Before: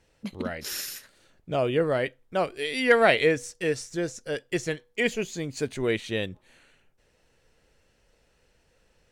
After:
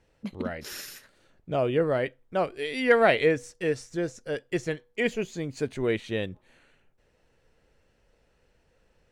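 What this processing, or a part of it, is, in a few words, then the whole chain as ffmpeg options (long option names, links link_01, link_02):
behind a face mask: -af "highshelf=frequency=2900:gain=-8"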